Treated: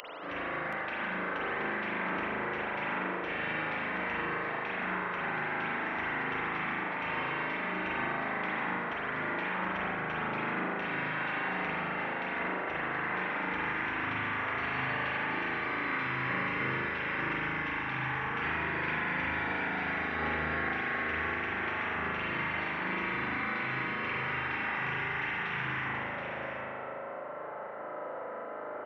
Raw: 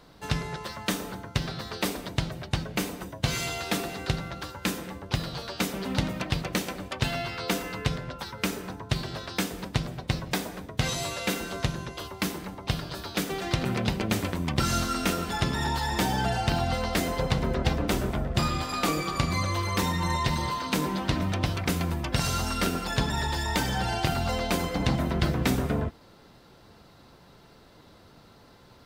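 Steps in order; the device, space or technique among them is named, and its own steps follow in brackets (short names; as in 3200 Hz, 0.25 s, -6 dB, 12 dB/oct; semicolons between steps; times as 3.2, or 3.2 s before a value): toy sound module (decimation joined by straight lines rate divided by 4×; pulse-width modulation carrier 2900 Hz; speaker cabinet 530–3900 Hz, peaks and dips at 580 Hz +8 dB, 1300 Hz +7 dB, 2000 Hz +9 dB); spectral gate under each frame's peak -25 dB weak; high shelf 6500 Hz +5.5 dB; echo 0.726 s -6.5 dB; spring tank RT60 2 s, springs 38 ms, chirp 45 ms, DRR -7.5 dB; gain +7 dB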